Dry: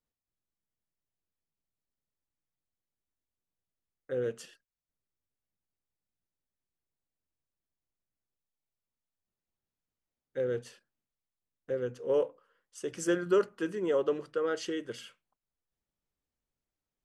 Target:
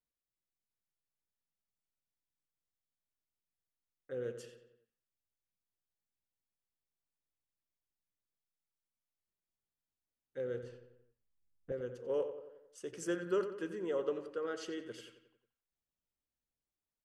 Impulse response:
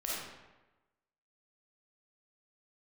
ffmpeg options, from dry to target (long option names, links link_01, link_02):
-filter_complex "[0:a]asettb=1/sr,asplit=3[link_01][link_02][link_03];[link_01]atrim=end=10.634[link_04];[link_02]atrim=start=10.63:end=11.72,asetpts=PTS-STARTPTS,afade=type=in:duration=0.004:curve=qsin,afade=type=out:start_time=1.086:duration=0.004:curve=qsin,aemphasis=mode=reproduction:type=riaa[link_05];[link_03]atrim=start=11.716[link_06];[link_04][link_05]acrossfade=duration=0.004:curve1=hsin:curve2=qsin[link_07];[link_07][link_06]acrossfade=duration=0.004:curve1=qsin:curve2=hsin,asplit=2[link_08][link_09];[link_09]adelay=90,lowpass=frequency=3300:poles=1,volume=-10dB,asplit=2[link_10][link_11];[link_11]adelay=90,lowpass=frequency=3300:poles=1,volume=0.54,asplit=2[link_12][link_13];[link_13]adelay=90,lowpass=frequency=3300:poles=1,volume=0.54,asplit=2[link_14][link_15];[link_15]adelay=90,lowpass=frequency=3300:poles=1,volume=0.54,asplit=2[link_16][link_17];[link_17]adelay=90,lowpass=frequency=3300:poles=1,volume=0.54,asplit=2[link_18][link_19];[link_19]adelay=90,lowpass=frequency=3300:poles=1,volume=0.54[link_20];[link_08][link_10][link_12][link_14][link_16][link_18][link_20]amix=inputs=7:normalize=0,volume=-7.5dB"